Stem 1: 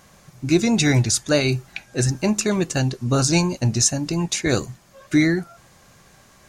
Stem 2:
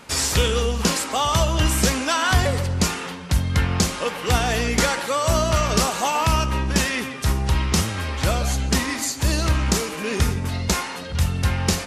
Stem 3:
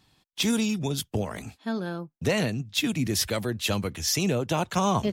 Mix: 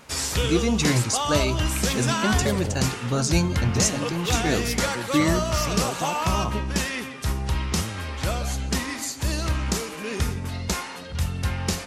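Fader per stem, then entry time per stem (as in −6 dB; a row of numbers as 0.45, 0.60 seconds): −5.0, −5.0, −5.0 decibels; 0.00, 0.00, 1.50 seconds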